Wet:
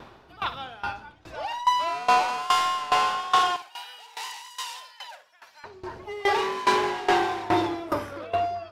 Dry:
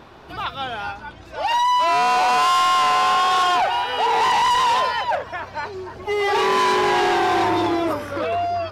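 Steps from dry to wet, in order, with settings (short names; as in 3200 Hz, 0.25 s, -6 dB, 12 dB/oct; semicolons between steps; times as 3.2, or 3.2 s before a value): 3.56–5.64 differentiator; flutter echo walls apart 10.3 m, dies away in 0.35 s; dB-ramp tremolo decaying 2.4 Hz, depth 19 dB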